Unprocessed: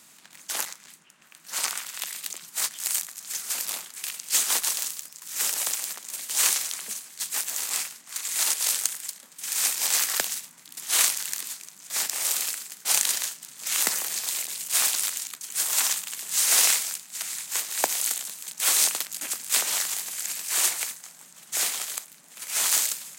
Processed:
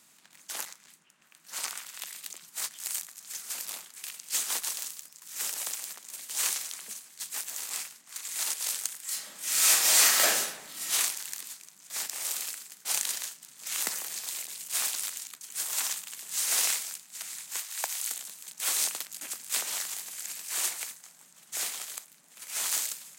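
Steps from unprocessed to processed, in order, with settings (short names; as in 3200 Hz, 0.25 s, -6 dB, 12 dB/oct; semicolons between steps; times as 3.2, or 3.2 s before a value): 9.04–10.91 reverb throw, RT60 0.87 s, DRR -12 dB; 17.57–18.11 HPF 820 Hz 12 dB/oct; gain -7 dB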